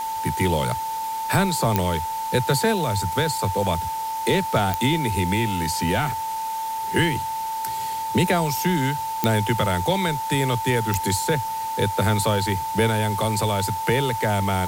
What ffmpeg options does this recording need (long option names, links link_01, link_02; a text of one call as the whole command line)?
ffmpeg -i in.wav -af "adeclick=threshold=4,bandreject=frequency=890:width=30,afwtdn=0.011" out.wav